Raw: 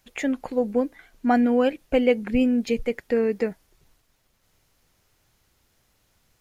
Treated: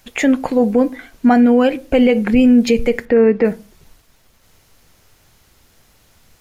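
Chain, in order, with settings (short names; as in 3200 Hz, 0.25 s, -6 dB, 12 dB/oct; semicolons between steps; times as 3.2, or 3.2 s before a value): 3.05–3.45 LPF 2300 Hz 12 dB/oct; on a send at -15.5 dB: reverb RT60 0.35 s, pre-delay 4 ms; on the sum: maximiser +16 dB; gain -3.5 dB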